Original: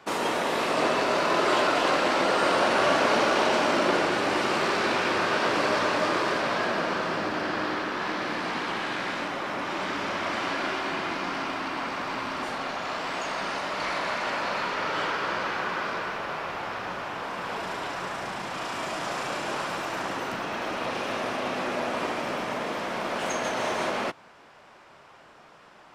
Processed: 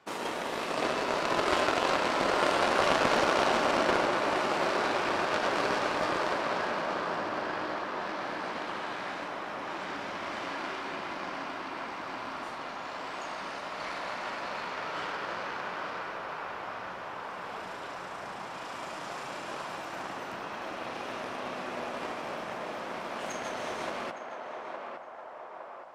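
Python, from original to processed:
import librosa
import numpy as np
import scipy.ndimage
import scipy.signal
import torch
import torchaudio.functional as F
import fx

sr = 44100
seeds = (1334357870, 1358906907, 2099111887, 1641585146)

y = fx.cheby_harmonics(x, sr, harmonics=(3,), levels_db=(-12,), full_scale_db=-10.0)
y = fx.echo_banded(y, sr, ms=863, feedback_pct=68, hz=830.0, wet_db=-3.0)
y = y * librosa.db_to_amplitude(2.5)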